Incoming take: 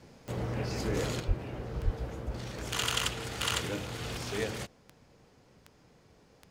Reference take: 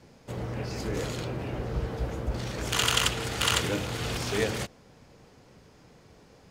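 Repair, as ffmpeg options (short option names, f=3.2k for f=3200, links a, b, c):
-filter_complex "[0:a]adeclick=t=4,asplit=3[a][b][c];[a]afade=t=out:st=1.27:d=0.02[d];[b]highpass=f=140:w=0.5412,highpass=f=140:w=1.3066,afade=t=in:st=1.27:d=0.02,afade=t=out:st=1.39:d=0.02[e];[c]afade=t=in:st=1.39:d=0.02[f];[d][e][f]amix=inputs=3:normalize=0,asplit=3[g][h][i];[g]afade=t=out:st=1.84:d=0.02[j];[h]highpass=f=140:w=0.5412,highpass=f=140:w=1.3066,afade=t=in:st=1.84:d=0.02,afade=t=out:st=1.96:d=0.02[k];[i]afade=t=in:st=1.96:d=0.02[l];[j][k][l]amix=inputs=3:normalize=0,asetnsamples=n=441:p=0,asendcmd='1.2 volume volume 6dB',volume=0dB"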